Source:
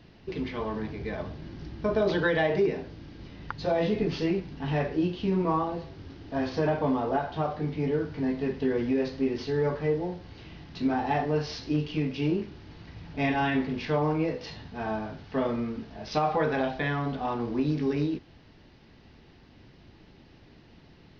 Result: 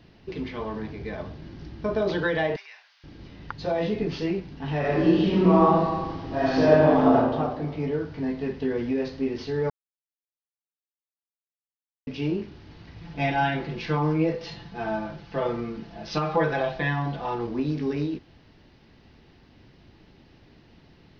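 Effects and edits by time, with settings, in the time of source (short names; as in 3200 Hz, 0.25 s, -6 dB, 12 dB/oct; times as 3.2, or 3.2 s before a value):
2.56–3.04 Bessel high-pass 1600 Hz, order 6
4.79–7.14 reverb throw, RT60 1.5 s, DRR -7.5 dB
9.7–12.07 mute
13.01–17.47 comb 5.9 ms, depth 81%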